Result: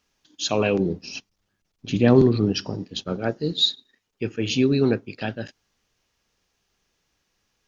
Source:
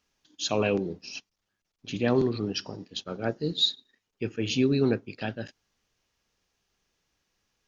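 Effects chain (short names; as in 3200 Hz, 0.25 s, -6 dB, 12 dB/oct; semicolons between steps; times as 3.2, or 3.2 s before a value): 0.79–3.19 low shelf 380 Hz +8 dB; gain +4 dB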